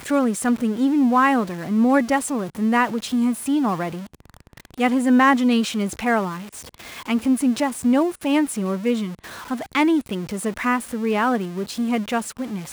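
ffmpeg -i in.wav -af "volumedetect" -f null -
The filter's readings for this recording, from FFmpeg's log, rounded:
mean_volume: -21.1 dB
max_volume: -6.0 dB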